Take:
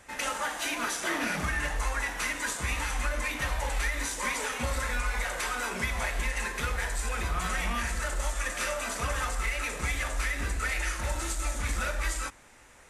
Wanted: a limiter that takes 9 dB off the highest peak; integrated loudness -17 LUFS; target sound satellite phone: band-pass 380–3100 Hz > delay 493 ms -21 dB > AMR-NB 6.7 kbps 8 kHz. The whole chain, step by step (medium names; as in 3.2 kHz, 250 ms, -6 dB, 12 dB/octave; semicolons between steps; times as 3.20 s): peak limiter -26 dBFS; band-pass 380–3100 Hz; delay 493 ms -21 dB; trim +24 dB; AMR-NB 6.7 kbps 8 kHz